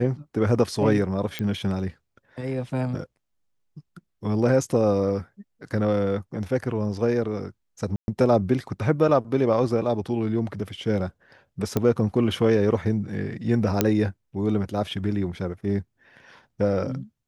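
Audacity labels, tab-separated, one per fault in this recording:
1.390000	1.390000	pop -16 dBFS
7.960000	8.080000	dropout 121 ms
11.770000	11.770000	pop -10 dBFS
13.810000	13.810000	pop -4 dBFS

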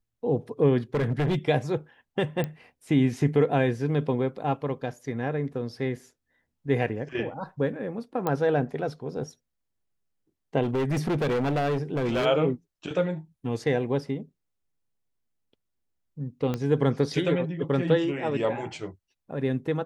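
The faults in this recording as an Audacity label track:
0.940000	1.360000	clipped -21 dBFS
2.440000	2.440000	pop -17 dBFS
8.270000	8.270000	pop -14 dBFS
10.620000	12.260000	clipped -22.5 dBFS
16.540000	16.540000	pop -16 dBFS

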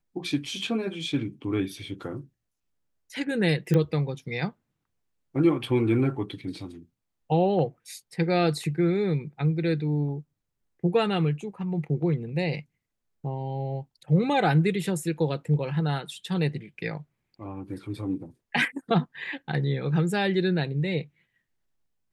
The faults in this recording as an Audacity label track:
3.740000	3.740000	pop -14 dBFS

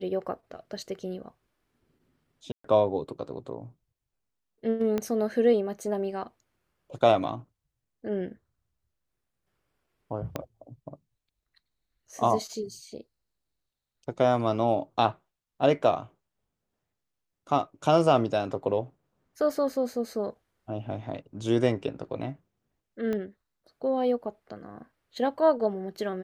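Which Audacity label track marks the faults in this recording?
2.520000	2.640000	dropout 124 ms
4.980000	4.980000	pop -16 dBFS
10.360000	10.360000	pop -16 dBFS
23.130000	23.130000	pop -20 dBFS

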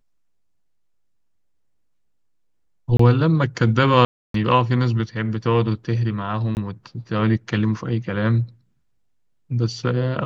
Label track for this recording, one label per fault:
2.970000	2.990000	dropout 24 ms
4.050000	4.340000	dropout 293 ms
6.550000	6.570000	dropout 19 ms

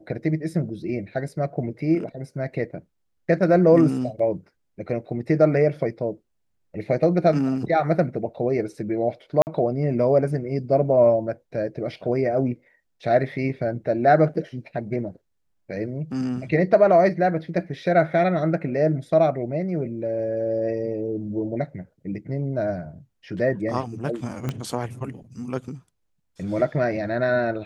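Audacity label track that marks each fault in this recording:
9.420000	9.470000	dropout 49 ms
24.490000	24.490000	pop -14 dBFS

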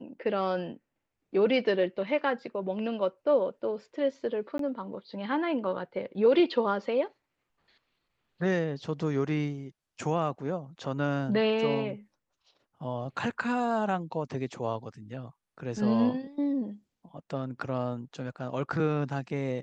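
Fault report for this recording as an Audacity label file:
4.580000	4.590000	dropout 13 ms

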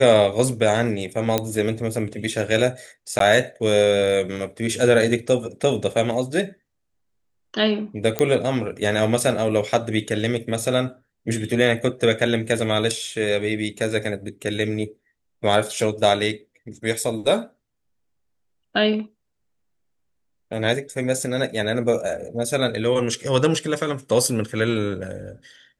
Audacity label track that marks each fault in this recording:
1.380000	1.380000	pop -5 dBFS
3.190000	3.200000	dropout 13 ms
8.190000	8.190000	pop -6 dBFS

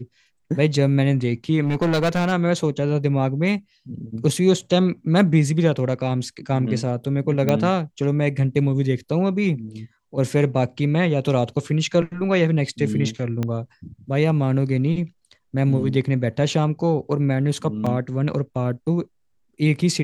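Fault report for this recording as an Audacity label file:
1.620000	2.330000	clipped -16 dBFS
7.490000	7.490000	pop -7 dBFS
13.430000	13.430000	pop -13 dBFS
17.860000	17.860000	dropout 5 ms

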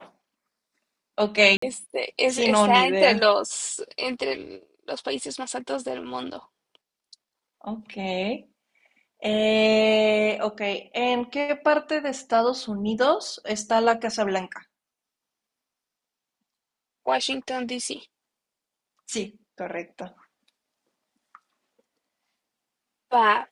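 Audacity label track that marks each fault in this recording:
1.570000	1.620000	dropout 54 ms

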